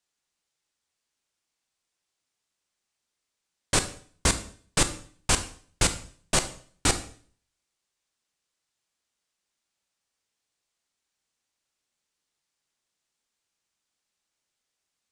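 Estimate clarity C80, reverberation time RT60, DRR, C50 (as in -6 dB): 16.5 dB, 0.50 s, 9.0 dB, 12.5 dB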